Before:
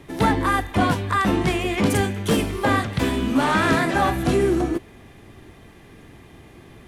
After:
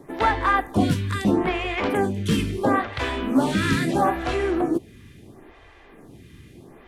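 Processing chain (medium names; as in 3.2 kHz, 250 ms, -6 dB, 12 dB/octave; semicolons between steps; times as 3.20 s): treble shelf 7.6 kHz -3.5 dB, from 1.24 s -11.5 dB, from 2.97 s -3.5 dB; lamp-driven phase shifter 0.75 Hz; trim +2 dB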